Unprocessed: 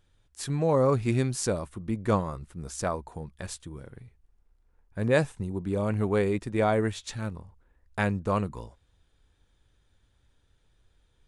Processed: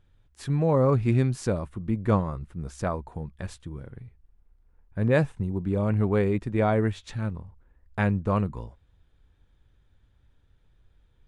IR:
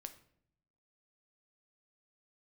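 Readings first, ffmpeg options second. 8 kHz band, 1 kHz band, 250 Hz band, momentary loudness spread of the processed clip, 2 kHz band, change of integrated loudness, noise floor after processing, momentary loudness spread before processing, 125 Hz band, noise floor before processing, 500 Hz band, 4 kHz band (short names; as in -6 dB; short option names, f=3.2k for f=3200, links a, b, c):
n/a, 0.0 dB, +3.0 dB, 17 LU, -0.5 dB, +2.5 dB, -64 dBFS, 16 LU, +4.5 dB, -68 dBFS, +0.5 dB, -5.0 dB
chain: -af "bass=f=250:g=5,treble=f=4k:g=-10"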